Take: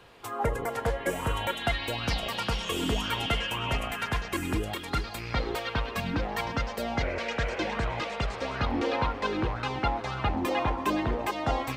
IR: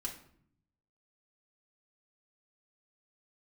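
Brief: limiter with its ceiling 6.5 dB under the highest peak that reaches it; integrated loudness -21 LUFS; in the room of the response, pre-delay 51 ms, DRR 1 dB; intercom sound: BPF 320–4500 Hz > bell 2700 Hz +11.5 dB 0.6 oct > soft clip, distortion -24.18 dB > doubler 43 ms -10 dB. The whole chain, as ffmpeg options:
-filter_complex "[0:a]alimiter=limit=-21.5dB:level=0:latency=1,asplit=2[a][b];[1:a]atrim=start_sample=2205,adelay=51[c];[b][c]afir=irnorm=-1:irlink=0,volume=-0.5dB[d];[a][d]amix=inputs=2:normalize=0,highpass=320,lowpass=4.5k,equalizer=f=2.7k:t=o:w=0.6:g=11.5,asoftclip=threshold=-16.5dB,asplit=2[e][f];[f]adelay=43,volume=-10dB[g];[e][g]amix=inputs=2:normalize=0,volume=6dB"

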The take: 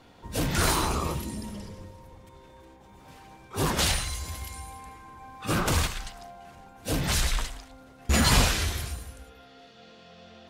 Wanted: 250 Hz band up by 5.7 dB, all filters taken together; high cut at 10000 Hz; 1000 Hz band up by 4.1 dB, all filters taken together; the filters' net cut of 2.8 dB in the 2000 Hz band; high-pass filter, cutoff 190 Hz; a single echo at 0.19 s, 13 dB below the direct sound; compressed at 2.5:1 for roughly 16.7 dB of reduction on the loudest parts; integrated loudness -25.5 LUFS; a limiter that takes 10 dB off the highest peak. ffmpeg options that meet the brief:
-af "highpass=190,lowpass=10k,equalizer=f=250:t=o:g=9,equalizer=f=1k:t=o:g=6,equalizer=f=2k:t=o:g=-6,acompressor=threshold=-43dB:ratio=2.5,alimiter=level_in=11dB:limit=-24dB:level=0:latency=1,volume=-11dB,aecho=1:1:190:0.224,volume=19.5dB"

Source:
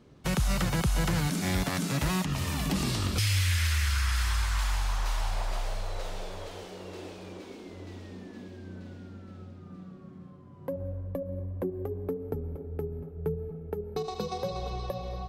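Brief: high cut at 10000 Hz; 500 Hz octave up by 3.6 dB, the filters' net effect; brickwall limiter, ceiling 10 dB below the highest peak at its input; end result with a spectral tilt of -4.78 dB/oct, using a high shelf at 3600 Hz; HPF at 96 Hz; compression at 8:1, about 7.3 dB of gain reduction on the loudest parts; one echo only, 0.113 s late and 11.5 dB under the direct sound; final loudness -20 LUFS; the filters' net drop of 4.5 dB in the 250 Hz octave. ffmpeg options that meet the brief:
-af "highpass=96,lowpass=10k,equalizer=f=250:t=o:g=-9,equalizer=f=500:t=o:g=7,highshelf=f=3.6k:g=-4,acompressor=threshold=-33dB:ratio=8,alimiter=level_in=7.5dB:limit=-24dB:level=0:latency=1,volume=-7.5dB,aecho=1:1:113:0.266,volume=21.5dB"

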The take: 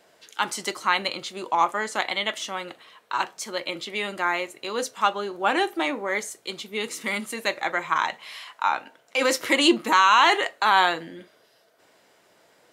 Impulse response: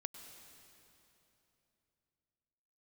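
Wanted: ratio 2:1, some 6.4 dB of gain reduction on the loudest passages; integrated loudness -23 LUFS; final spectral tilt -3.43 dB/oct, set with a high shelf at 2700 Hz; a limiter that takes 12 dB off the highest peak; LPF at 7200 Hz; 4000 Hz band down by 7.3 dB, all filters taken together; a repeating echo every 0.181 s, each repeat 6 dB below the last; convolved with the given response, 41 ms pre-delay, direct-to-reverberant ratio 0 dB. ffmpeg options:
-filter_complex "[0:a]lowpass=7.2k,highshelf=f=2.7k:g=-6,equalizer=f=4k:t=o:g=-5,acompressor=threshold=-25dB:ratio=2,alimiter=level_in=0.5dB:limit=-24dB:level=0:latency=1,volume=-0.5dB,aecho=1:1:181|362|543|724|905|1086:0.501|0.251|0.125|0.0626|0.0313|0.0157,asplit=2[a][b];[1:a]atrim=start_sample=2205,adelay=41[c];[b][c]afir=irnorm=-1:irlink=0,volume=3dB[d];[a][d]amix=inputs=2:normalize=0,volume=8.5dB"

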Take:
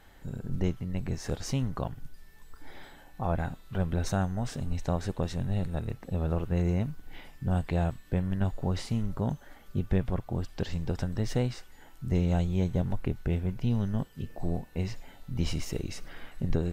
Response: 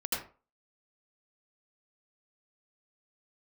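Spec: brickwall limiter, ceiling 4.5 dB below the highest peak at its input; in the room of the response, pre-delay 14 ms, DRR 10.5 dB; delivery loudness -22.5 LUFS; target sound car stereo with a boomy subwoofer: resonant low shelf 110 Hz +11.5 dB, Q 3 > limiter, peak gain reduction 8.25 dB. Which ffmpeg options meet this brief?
-filter_complex "[0:a]alimiter=limit=-19dB:level=0:latency=1,asplit=2[a][b];[1:a]atrim=start_sample=2205,adelay=14[c];[b][c]afir=irnorm=-1:irlink=0,volume=-16dB[d];[a][d]amix=inputs=2:normalize=0,lowshelf=f=110:t=q:w=3:g=11.5,volume=2dB,alimiter=limit=-12dB:level=0:latency=1"

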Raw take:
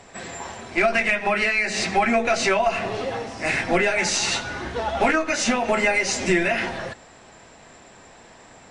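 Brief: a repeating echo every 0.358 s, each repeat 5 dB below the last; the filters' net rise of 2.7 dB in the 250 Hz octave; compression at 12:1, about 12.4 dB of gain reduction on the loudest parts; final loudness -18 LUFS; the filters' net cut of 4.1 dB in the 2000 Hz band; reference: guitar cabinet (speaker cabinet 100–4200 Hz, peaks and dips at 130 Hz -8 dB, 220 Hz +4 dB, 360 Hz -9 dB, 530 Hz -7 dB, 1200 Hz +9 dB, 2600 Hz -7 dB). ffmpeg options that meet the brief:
-af "equalizer=f=250:t=o:g=3.5,equalizer=f=2k:t=o:g=-3.5,acompressor=threshold=-27dB:ratio=12,highpass=100,equalizer=f=130:t=q:w=4:g=-8,equalizer=f=220:t=q:w=4:g=4,equalizer=f=360:t=q:w=4:g=-9,equalizer=f=530:t=q:w=4:g=-7,equalizer=f=1.2k:t=q:w=4:g=9,equalizer=f=2.6k:t=q:w=4:g=-7,lowpass=f=4.2k:w=0.5412,lowpass=f=4.2k:w=1.3066,aecho=1:1:358|716|1074|1432|1790|2148|2506:0.562|0.315|0.176|0.0988|0.0553|0.031|0.0173,volume=13dB"

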